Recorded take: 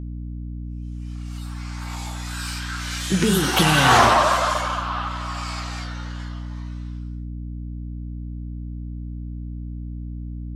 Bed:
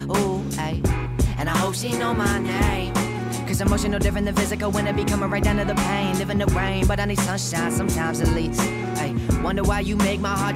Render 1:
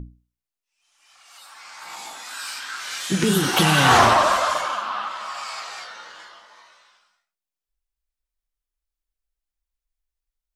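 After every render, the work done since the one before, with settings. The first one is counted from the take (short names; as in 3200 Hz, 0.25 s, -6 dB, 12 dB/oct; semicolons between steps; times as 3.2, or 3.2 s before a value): notches 60/120/180/240/300 Hz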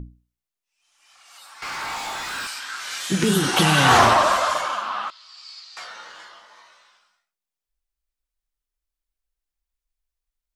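1.62–2.47 overdrive pedal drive 29 dB, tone 2600 Hz, clips at -21 dBFS; 3.31–3.88 steep low-pass 12000 Hz; 5.1–5.77 band-pass 4500 Hz, Q 4.6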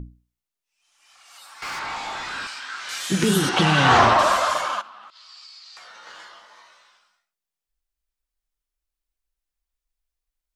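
1.79–2.89 air absorption 82 m; 3.49–4.19 air absorption 100 m; 4.81–6.07 compressor 12:1, threshold -40 dBFS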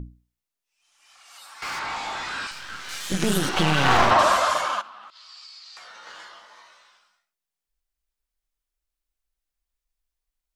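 2.51–4.11 half-wave gain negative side -12 dB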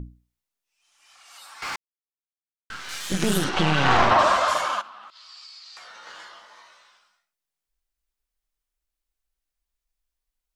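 1.76–2.7 mute; 3.44–4.48 air absorption 62 m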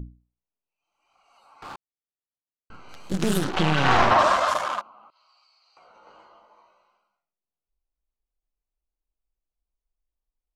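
Wiener smoothing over 25 samples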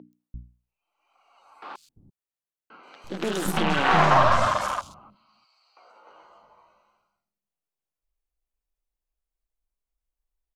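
three bands offset in time mids, highs, lows 0.13/0.34 s, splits 230/4500 Hz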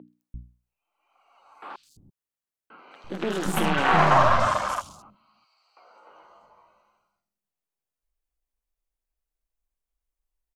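bands offset in time lows, highs 80 ms, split 4100 Hz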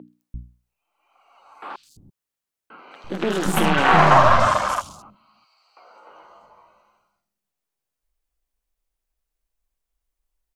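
gain +5 dB; limiter -2 dBFS, peak gain reduction 2 dB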